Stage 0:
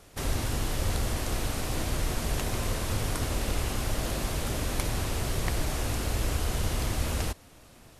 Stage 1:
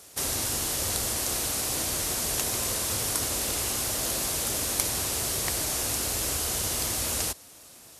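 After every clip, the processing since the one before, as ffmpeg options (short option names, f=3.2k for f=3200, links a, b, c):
-af "highpass=57,bass=f=250:g=-7,treble=f=4k:g=12"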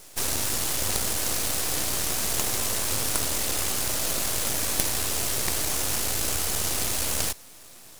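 -af "aeval=exprs='max(val(0),0)':c=same,volume=6dB"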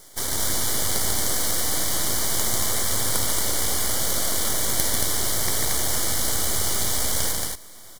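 -filter_complex "[0:a]asuperstop=centerf=2600:order=8:qfactor=4.5,asplit=2[a][b];[b]aecho=0:1:142.9|227.4:0.631|0.708[c];[a][c]amix=inputs=2:normalize=0"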